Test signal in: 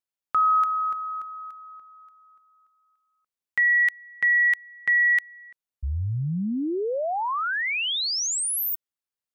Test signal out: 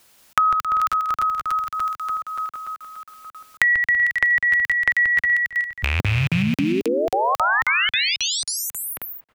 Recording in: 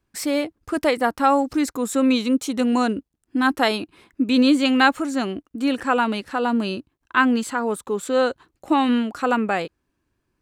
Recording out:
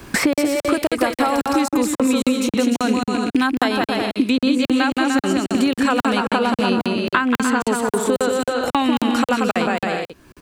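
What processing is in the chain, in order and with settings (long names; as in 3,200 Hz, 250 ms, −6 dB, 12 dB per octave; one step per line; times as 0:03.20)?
loose part that buzzes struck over −29 dBFS, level −25 dBFS
downward compressor, threshold −23 dBFS
on a send: bouncing-ball delay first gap 180 ms, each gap 0.65×, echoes 5
on the sum: regular buffer underruns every 0.27 s, samples 2,048, zero, from 0:00.33
multiband upward and downward compressor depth 100%
level +7 dB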